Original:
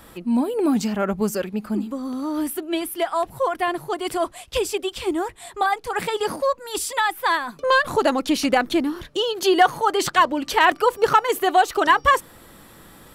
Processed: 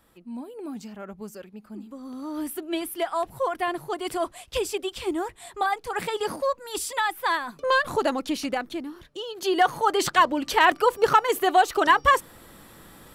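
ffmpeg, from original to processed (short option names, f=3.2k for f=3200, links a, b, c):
-af "volume=6dB,afade=t=in:st=1.72:d=1.01:silence=0.251189,afade=t=out:st=7.91:d=0.85:silence=0.398107,afade=t=in:st=9.26:d=0.59:silence=0.316228"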